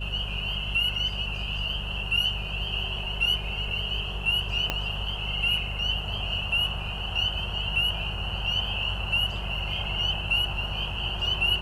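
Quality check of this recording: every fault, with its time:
mains hum 50 Hz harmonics 4 −34 dBFS
0:04.70: click −11 dBFS

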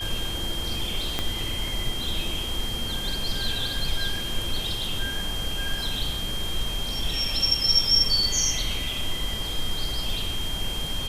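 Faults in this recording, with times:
whistle 3,200 Hz −31 dBFS
0:01.19: click −10 dBFS

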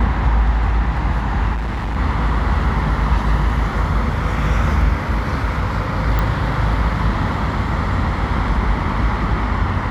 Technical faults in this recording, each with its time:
0:01.55–0:01.97: clipping −19 dBFS
0:06.19: click −8 dBFS

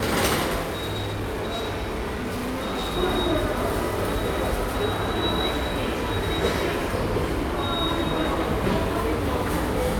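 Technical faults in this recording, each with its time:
0:00.64–0:02.97: clipping −24.5 dBFS

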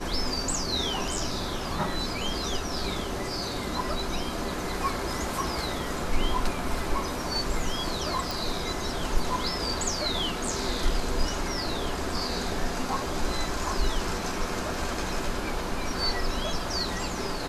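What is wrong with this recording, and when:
0:08.31: click

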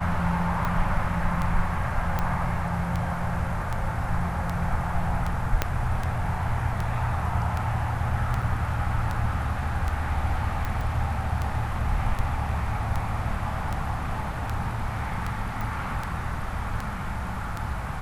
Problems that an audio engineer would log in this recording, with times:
scratch tick 78 rpm −16 dBFS
0:02.19: click
0:05.62: click −7 dBFS
0:08.42: drop-out 4.3 ms
0:10.81: drop-out 3.4 ms
0:15.61: click

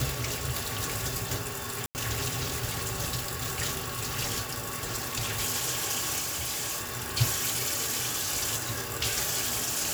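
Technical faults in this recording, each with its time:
0:01.86–0:01.95: drop-out 89 ms
0:06.18–0:06.90: clipping −29 dBFS

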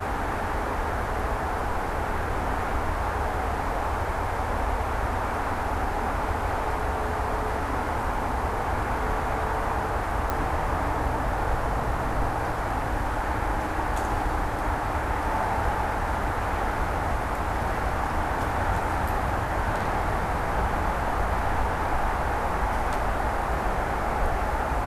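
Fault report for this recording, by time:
0:10.30: click −13 dBFS

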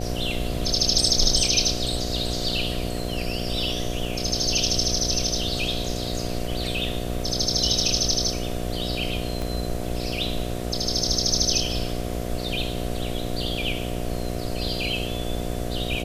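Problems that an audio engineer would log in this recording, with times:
mains buzz 60 Hz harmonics 12 −30 dBFS
0:09.42: click

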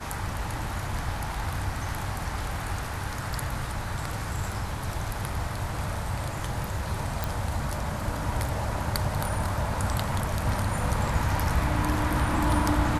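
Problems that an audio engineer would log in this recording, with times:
0:07.24: click

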